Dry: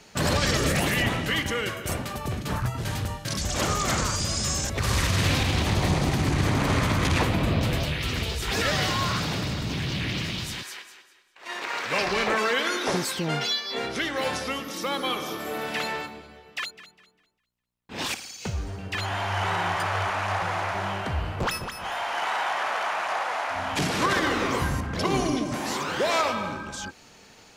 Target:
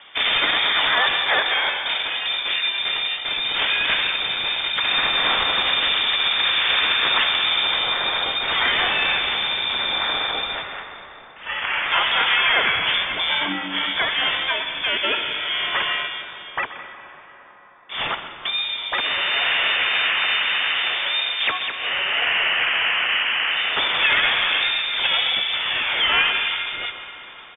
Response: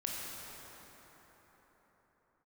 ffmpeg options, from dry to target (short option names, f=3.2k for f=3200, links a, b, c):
-filter_complex "[0:a]lowpass=f=3.1k:t=q:w=0.5098,lowpass=f=3.1k:t=q:w=0.6013,lowpass=f=3.1k:t=q:w=0.9,lowpass=f=3.1k:t=q:w=2.563,afreqshift=-3700,acrossover=split=2800[a][b];[b]acompressor=threshold=-33dB:ratio=4:attack=1:release=60[c];[a][c]amix=inputs=2:normalize=0,asplit=2[d][e];[1:a]atrim=start_sample=2205,highshelf=f=8k:g=-9,adelay=127[f];[e][f]afir=irnorm=-1:irlink=0,volume=-11dB[g];[d][g]amix=inputs=2:normalize=0,asplit=2[h][i];[i]asetrate=29433,aresample=44100,atempo=1.49831,volume=-7dB[j];[h][j]amix=inputs=2:normalize=0,volume=7dB"